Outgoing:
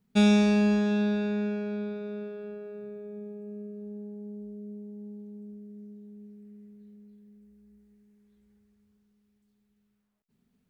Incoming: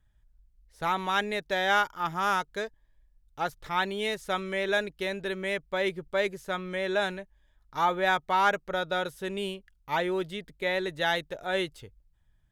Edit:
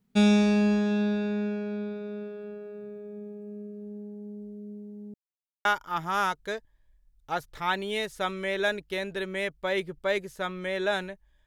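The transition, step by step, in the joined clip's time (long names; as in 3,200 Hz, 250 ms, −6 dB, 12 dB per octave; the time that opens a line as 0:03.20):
outgoing
0:05.14–0:05.65: silence
0:05.65: continue with incoming from 0:01.74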